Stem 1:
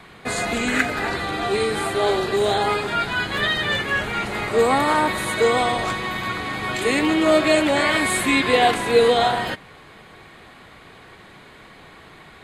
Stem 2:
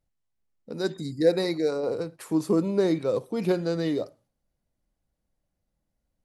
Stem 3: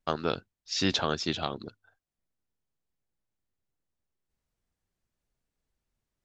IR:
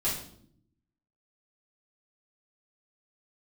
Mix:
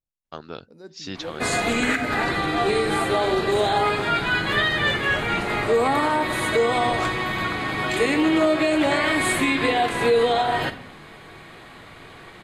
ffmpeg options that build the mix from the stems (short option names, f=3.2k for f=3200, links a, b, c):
-filter_complex "[0:a]adynamicequalizer=threshold=0.0141:dfrequency=4300:dqfactor=0.7:tfrequency=4300:tqfactor=0.7:attack=5:release=100:ratio=0.375:range=2:mode=cutabove:tftype=highshelf,adelay=1150,volume=0dB,asplit=2[a][b];[b]volume=-14.5dB[c];[1:a]acrossover=split=2600[d][e];[e]acompressor=threshold=-45dB:ratio=4:attack=1:release=60[f];[d][f]amix=inputs=2:normalize=0,volume=-14.5dB[g];[2:a]adelay=250,volume=-7dB[h];[3:a]atrim=start_sample=2205[i];[c][i]afir=irnorm=-1:irlink=0[j];[a][g][h][j]amix=inputs=4:normalize=0,alimiter=limit=-11dB:level=0:latency=1:release=181"